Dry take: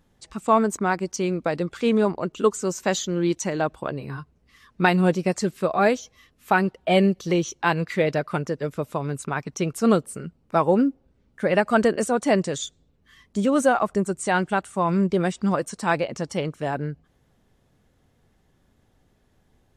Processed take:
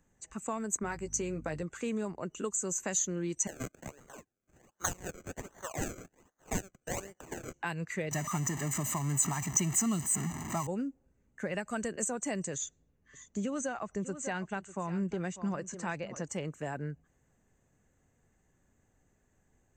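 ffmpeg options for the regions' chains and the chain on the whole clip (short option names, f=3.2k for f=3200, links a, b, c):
-filter_complex "[0:a]asettb=1/sr,asplit=3[a][b][c];[a]atrim=end=0.824[d];[b]atrim=start=0.82:end=1.63,asetpts=PTS-STARTPTS,afade=t=in:d=0.004:c=qsin,afade=t=out:st=0.806:d=0.004:c=qsin,aeval=exprs='val(0)+0.0112*(sin(2*PI*50*n/s)+sin(2*PI*2*50*n/s)/2+sin(2*PI*3*50*n/s)/3+sin(2*PI*4*50*n/s)/4+sin(2*PI*5*50*n/s)/5)':c=same,asplit=2[e][f];[f]adelay=13,volume=-7dB[g];[e][g]amix=inputs=2:normalize=0,atrim=end_sample=35721[h];[c]atrim=start=1.626[i];[d][h]acrossfade=d=0.004:c1=hsin:c2=qsin[j];[j][i]acrossfade=d=0.004:c1=qsin:c2=hsin,asettb=1/sr,asplit=3[k][l][m];[k]atrim=end=3.474[n];[l]atrim=start=3.47:end=7.54,asetpts=PTS-STARTPTS,afade=t=in:d=0.004:c=qsin,afade=t=out:st=4.066:d=0.004:c=qsin,highpass=1.1k,acrusher=samples=33:mix=1:aa=0.000001:lfo=1:lforange=33:lforate=1.3[o];[m]atrim=start=7.536[p];[n][o]acrossfade=d=0.004:c1=hsin:c2=qsin[q];[q][p]acrossfade=d=0.004:c1=qsin:c2=hsin,asettb=1/sr,asplit=3[r][s][t];[r]atrim=end=8.114[u];[s]atrim=start=8.11:end=10.67,asetpts=PTS-STARTPTS,afade=t=in:d=0.004:c=qsin,afade=t=out:st=2.556:d=0.004:c=qsin,aeval=exprs='val(0)+0.5*0.0447*sgn(val(0))':c=same,highpass=120,aecho=1:1:1:0.97,atrim=end_sample=112896[v];[t]atrim=start=10.666[w];[u][v]acrossfade=d=0.004:c1=hsin:c2=qsin[x];[x][w]acrossfade=d=0.004:c1=qsin:c2=hsin,asettb=1/sr,asplit=3[y][z][aa];[y]atrim=end=12.544[ab];[z]atrim=start=12.54:end=16.28,asetpts=PTS-STARTPTS,afade=t=in:d=0.004:c=qsin,afade=t=out:st=3.736:d=0.004:c=qsin,lowpass=f=6.3k:w=0.5412,lowpass=f=6.3k:w=1.3066,aecho=1:1:595:0.15,atrim=end_sample=164934[ac];[aa]atrim=start=16.276[ad];[ab][ac]acrossfade=d=0.004:c1=hsin:c2=qsin[ae];[ae][ad]acrossfade=d=0.004:c1=qsin:c2=hsin,superequalizer=11b=1.41:13b=0.398:14b=0.501:15b=3.16:16b=0.447,acrossover=split=160|3000[af][ag][ah];[ag]acompressor=threshold=-26dB:ratio=6[ai];[af][ai][ah]amix=inputs=3:normalize=0,volume=-8dB"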